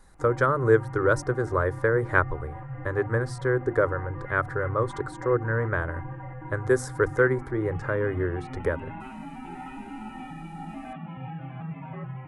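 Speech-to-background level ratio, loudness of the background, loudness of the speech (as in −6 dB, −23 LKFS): 12.5 dB, −39.0 LKFS, −26.5 LKFS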